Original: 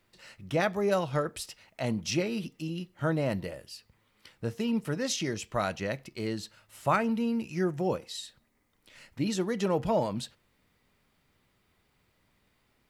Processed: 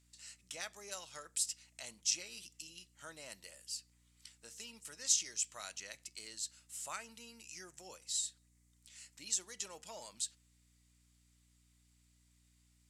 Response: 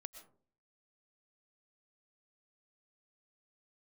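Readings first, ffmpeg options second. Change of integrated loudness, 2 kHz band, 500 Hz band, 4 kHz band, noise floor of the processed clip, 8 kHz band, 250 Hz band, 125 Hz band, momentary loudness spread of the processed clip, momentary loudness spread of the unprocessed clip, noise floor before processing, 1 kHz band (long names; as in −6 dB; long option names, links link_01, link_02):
−8.5 dB, −13.0 dB, −25.0 dB, −3.0 dB, −71 dBFS, +5.5 dB, −31.0 dB, below −30 dB, 17 LU, 13 LU, −72 dBFS, −19.5 dB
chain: -filter_complex "[0:a]asplit=2[link_01][link_02];[link_02]acompressor=threshold=-35dB:ratio=6,volume=-2.5dB[link_03];[link_01][link_03]amix=inputs=2:normalize=0,bandpass=frequency=7600:width_type=q:width=2.8:csg=0,aeval=exprs='val(0)+0.000158*(sin(2*PI*60*n/s)+sin(2*PI*2*60*n/s)/2+sin(2*PI*3*60*n/s)/3+sin(2*PI*4*60*n/s)/4+sin(2*PI*5*60*n/s)/5)':channel_layout=same,volume=6dB"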